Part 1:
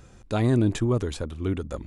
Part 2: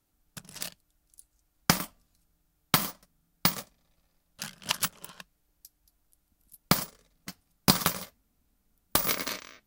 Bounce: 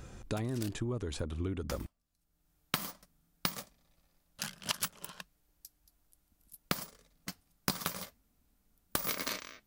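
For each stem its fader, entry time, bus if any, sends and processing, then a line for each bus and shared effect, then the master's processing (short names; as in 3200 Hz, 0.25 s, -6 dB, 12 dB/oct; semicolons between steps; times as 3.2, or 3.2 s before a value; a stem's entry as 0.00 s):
+1.0 dB, 0.00 s, no send, compressor 6:1, threshold -33 dBFS, peak gain reduction 15 dB
-0.5 dB, 0.00 s, no send, auto duck -20 dB, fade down 1.65 s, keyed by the first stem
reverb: off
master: compressor 12:1, threshold -29 dBFS, peak gain reduction 15 dB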